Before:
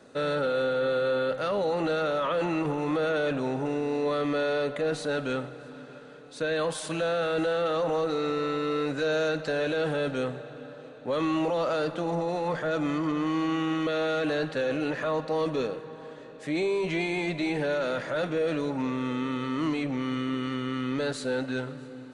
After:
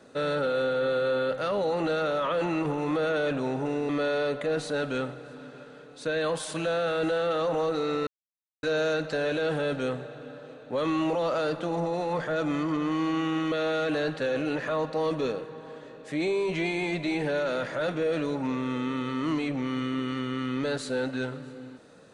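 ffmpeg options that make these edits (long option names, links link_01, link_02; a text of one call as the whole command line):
ffmpeg -i in.wav -filter_complex "[0:a]asplit=4[link_01][link_02][link_03][link_04];[link_01]atrim=end=3.892[link_05];[link_02]atrim=start=4.238:end=8.42,asetpts=PTS-STARTPTS,afade=type=out:start_time=4.178:duration=0.004:curve=hsin[link_06];[link_03]atrim=start=8.42:end=8.98,asetpts=PTS-STARTPTS,volume=0[link_07];[link_04]atrim=start=8.98,asetpts=PTS-STARTPTS,afade=type=in:duration=0.004:curve=hsin[link_08];[link_06][link_07][link_08]concat=n=3:v=0:a=1[link_09];[link_05][link_09]acrossfade=duration=0.004:curve1=hsin:curve2=hsin" out.wav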